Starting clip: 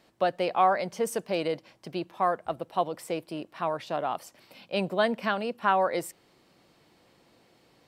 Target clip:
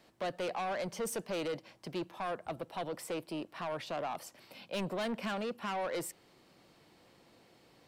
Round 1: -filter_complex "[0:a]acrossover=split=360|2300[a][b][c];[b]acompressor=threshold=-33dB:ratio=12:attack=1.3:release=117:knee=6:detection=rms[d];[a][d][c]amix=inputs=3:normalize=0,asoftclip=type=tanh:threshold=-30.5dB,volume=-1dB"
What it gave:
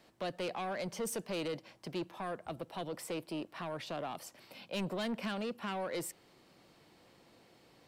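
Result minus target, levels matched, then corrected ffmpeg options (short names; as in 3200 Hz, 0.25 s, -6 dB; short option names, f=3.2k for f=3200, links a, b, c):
compressor: peak gain reduction +7.5 dB
-filter_complex "[0:a]acrossover=split=360|2300[a][b][c];[b]acompressor=threshold=-25dB:ratio=12:attack=1.3:release=117:knee=6:detection=rms[d];[a][d][c]amix=inputs=3:normalize=0,asoftclip=type=tanh:threshold=-30.5dB,volume=-1dB"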